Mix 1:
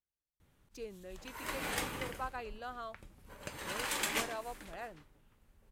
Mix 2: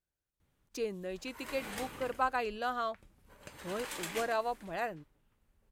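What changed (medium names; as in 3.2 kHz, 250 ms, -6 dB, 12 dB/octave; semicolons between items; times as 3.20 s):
speech +9.5 dB; background -6.0 dB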